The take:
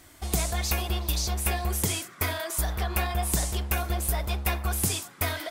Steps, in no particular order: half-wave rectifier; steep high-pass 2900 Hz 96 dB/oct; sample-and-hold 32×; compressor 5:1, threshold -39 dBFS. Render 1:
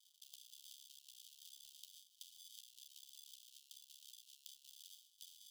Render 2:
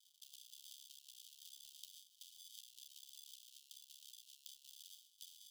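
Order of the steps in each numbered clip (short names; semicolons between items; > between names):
sample-and-hold > compressor > half-wave rectifier > steep high-pass; half-wave rectifier > compressor > sample-and-hold > steep high-pass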